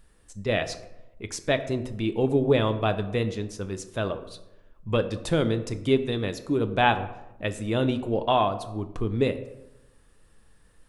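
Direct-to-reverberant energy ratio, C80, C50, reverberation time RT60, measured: 9.0 dB, 15.0 dB, 13.0 dB, 0.95 s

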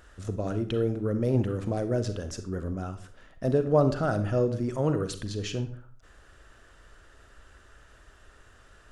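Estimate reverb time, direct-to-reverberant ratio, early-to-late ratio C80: 0.50 s, 9.5 dB, 15.5 dB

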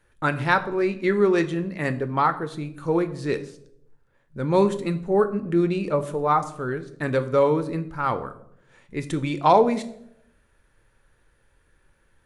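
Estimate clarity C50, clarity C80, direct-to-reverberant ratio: 15.0 dB, 17.5 dB, 9.5 dB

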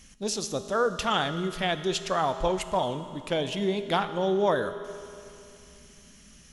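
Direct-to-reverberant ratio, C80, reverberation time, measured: 10.0 dB, 12.0 dB, 2.7 s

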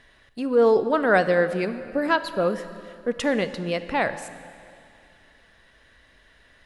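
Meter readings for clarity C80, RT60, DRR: 13.0 dB, 2.5 s, 11.5 dB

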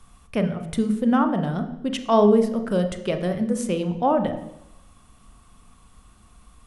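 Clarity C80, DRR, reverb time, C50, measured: 12.5 dB, 7.0 dB, 0.85 s, 10.0 dB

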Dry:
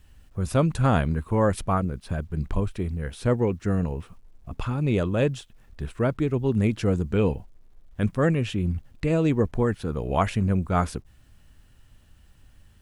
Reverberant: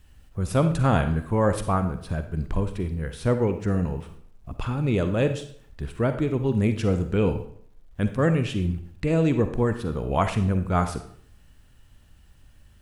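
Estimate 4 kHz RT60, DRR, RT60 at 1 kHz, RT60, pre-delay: 0.50 s, 8.5 dB, 0.60 s, 0.60 s, 40 ms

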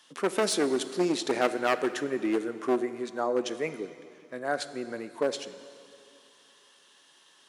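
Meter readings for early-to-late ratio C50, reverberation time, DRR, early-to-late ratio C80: 12.5 dB, 2.6 s, 11.5 dB, 13.0 dB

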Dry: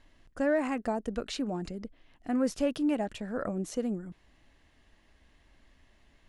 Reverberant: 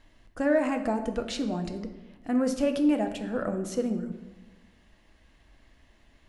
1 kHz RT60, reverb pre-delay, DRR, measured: 1.1 s, 5 ms, 6.0 dB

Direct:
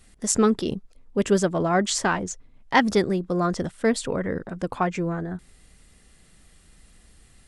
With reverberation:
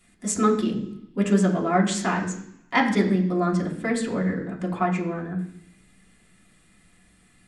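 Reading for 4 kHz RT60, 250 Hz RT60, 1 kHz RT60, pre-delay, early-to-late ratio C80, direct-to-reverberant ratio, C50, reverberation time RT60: 0.95 s, 0.85 s, 0.70 s, 3 ms, 11.0 dB, -3.0 dB, 9.0 dB, 0.70 s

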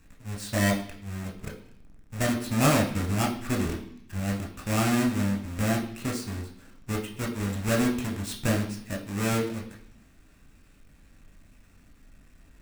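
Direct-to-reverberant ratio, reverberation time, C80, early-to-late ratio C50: -0.5 dB, 0.65 s, 11.5 dB, 8.5 dB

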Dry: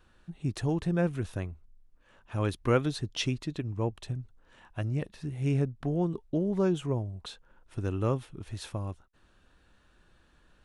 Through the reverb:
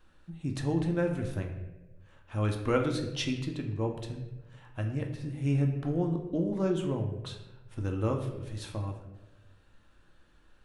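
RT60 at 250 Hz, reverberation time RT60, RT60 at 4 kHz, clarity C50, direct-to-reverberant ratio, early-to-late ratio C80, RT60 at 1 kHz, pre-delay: 1.2 s, 1.1 s, 0.65 s, 7.0 dB, 2.5 dB, 9.0 dB, 0.85 s, 3 ms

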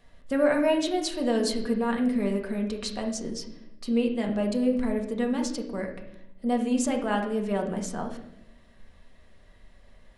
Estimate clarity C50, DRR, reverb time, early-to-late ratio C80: 7.5 dB, 1.5 dB, 0.85 s, 11.0 dB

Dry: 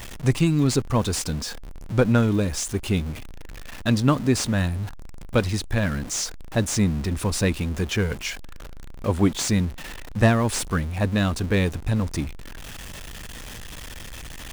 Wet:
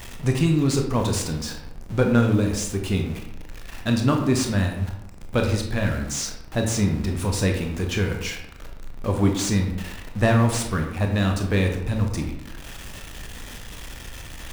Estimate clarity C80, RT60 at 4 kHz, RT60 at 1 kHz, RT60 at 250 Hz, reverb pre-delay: 8.5 dB, 0.45 s, 0.85 s, 0.85 s, 21 ms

